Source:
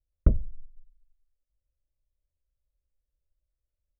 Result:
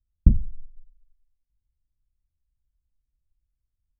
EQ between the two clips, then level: low-pass 1.3 kHz 24 dB/octave; resonant low shelf 340 Hz +13.5 dB, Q 1.5; -9.0 dB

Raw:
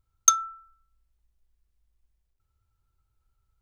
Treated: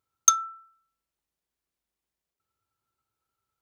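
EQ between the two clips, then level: high-pass 230 Hz 12 dB/octave; 0.0 dB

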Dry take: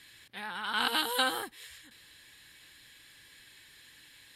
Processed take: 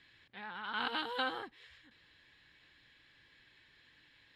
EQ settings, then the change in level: distance through air 220 m; -4.5 dB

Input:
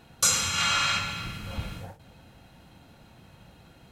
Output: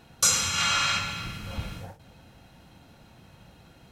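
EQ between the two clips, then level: peaking EQ 5.6 kHz +3.5 dB 0.27 oct; 0.0 dB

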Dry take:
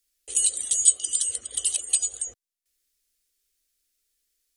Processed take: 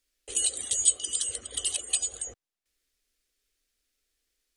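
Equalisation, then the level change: low-pass 2.6 kHz 6 dB/octave; +5.0 dB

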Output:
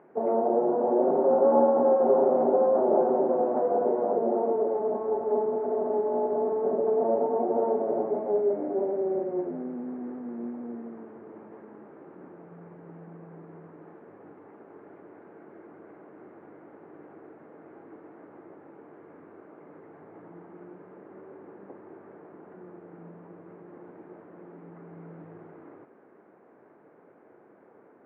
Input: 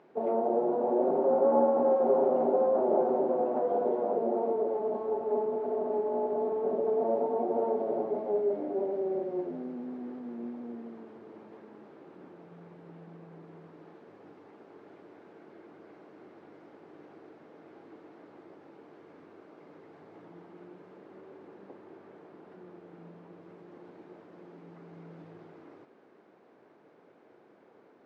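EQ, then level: low-pass 2 kHz 24 dB/octave; +3.5 dB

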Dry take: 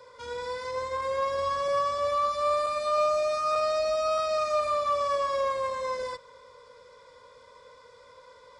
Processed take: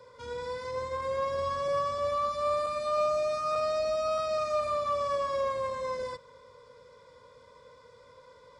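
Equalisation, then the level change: peaking EQ 140 Hz +10 dB 2.7 oct; -4.5 dB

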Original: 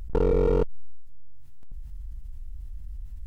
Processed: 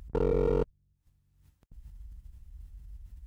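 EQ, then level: high-pass 49 Hz; -4.0 dB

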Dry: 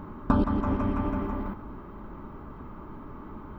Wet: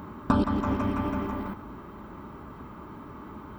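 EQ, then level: high-pass 62 Hz; treble shelf 2.8 kHz +11.5 dB; 0.0 dB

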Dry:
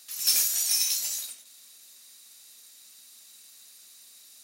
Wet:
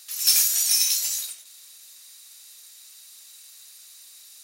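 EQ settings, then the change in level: high-pass 820 Hz 6 dB/octave; +4.5 dB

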